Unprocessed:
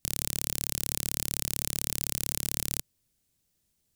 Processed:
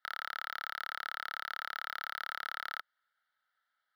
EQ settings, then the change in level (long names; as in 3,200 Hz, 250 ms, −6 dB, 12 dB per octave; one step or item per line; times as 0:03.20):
high-pass with resonance 1,300 Hz, resonance Q 12
high-frequency loss of the air 470 metres
phaser with its sweep stopped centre 1,700 Hz, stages 8
+7.0 dB